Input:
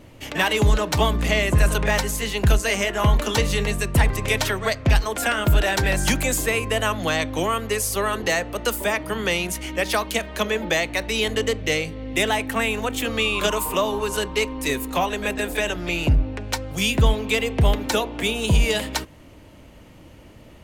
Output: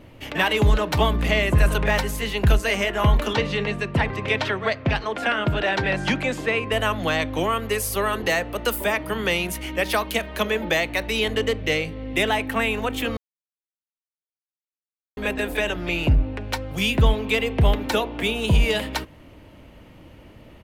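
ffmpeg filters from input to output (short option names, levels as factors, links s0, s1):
-filter_complex "[0:a]asettb=1/sr,asplit=3[s0][s1][s2];[s0]atrim=end=3.334[s3];[s1]atrim=start=3.33:end=6.72,asetpts=PTS-STARTPTS,afade=t=in:d=0.004:c=qsin,afade=t=out:st=3.386:d=0.004:c=qsin,highpass=110,lowpass=4600[s4];[s2]atrim=start=6.716[s5];[s3][s4]acrossfade=d=0.004:c1=hsin:c2=qsin[s6];[s6][s5]acrossfade=d=0.004:c1=qsin:c2=hsin,asettb=1/sr,asplit=3[s7][s8][s9];[s7]atrim=end=7.624[s10];[s8]atrim=start=7.62:end=11.19,asetpts=PTS-STARTPTS,afade=t=in:d=0.004:c=qsin,afade=t=out:st=3.566:d=0.004:c=qsin,highshelf=f=9000:g=6.5[s11];[s9]atrim=start=11.186[s12];[s10][s11]acrossfade=d=0.004:c1=hsin:c2=qsin[s13];[s13][s12]acrossfade=d=0.004:c1=qsin:c2=hsin,asplit=3[s14][s15][s16];[s14]atrim=end=13.17,asetpts=PTS-STARTPTS,afade=t=out:st=13.166:d=0.004:c=hsin[s17];[s15]atrim=start=13.17:end=15.17,asetpts=PTS-STARTPTS,volume=0[s18];[s16]atrim=start=15.17,asetpts=PTS-STARTPTS,afade=t=in:d=0.004:c=hsin[s19];[s17][s18][s19]concat=n=3:v=0:a=1,firequalizer=gain_entry='entry(2800,0);entry(6900,-9);entry(12000,-4)':delay=0.05:min_phase=1"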